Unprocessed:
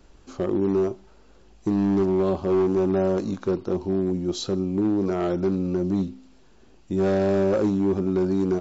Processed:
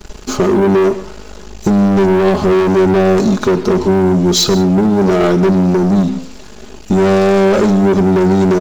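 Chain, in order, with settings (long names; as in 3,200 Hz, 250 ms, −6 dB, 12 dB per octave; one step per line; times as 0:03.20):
high-shelf EQ 4,500 Hz +7 dB
comb filter 4.8 ms, depth 70%
leveller curve on the samples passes 3
downward compressor 3 to 1, threshold −20 dBFS, peak gain reduction 5.5 dB
on a send: convolution reverb, pre-delay 93 ms, DRR 14.5 dB
on the sum: level +9 dB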